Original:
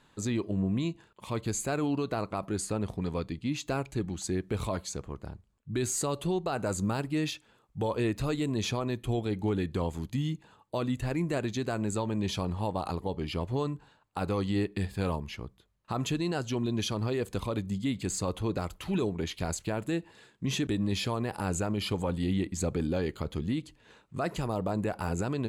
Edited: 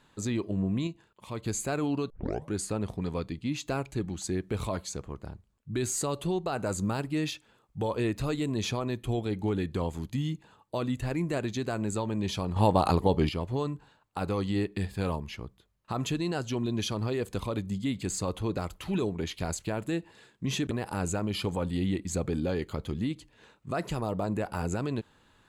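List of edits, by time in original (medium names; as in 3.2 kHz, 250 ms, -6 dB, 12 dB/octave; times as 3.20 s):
0.87–1.44 s: gain -4 dB
2.10 s: tape start 0.42 s
12.56–13.29 s: gain +9 dB
20.71–21.18 s: delete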